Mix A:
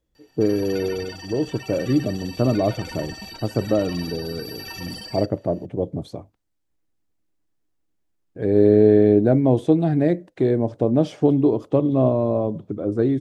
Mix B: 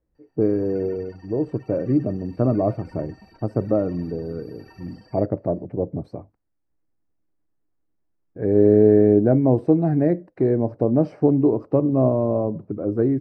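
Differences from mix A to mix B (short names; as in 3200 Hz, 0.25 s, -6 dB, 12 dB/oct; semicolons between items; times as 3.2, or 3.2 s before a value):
background -9.0 dB; master: add running mean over 13 samples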